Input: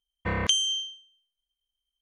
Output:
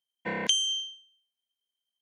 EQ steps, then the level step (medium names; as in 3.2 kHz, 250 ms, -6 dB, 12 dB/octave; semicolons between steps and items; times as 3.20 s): high-pass 180 Hz 24 dB/octave; Butterworth band-stop 1.2 kHz, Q 3.6; -1.5 dB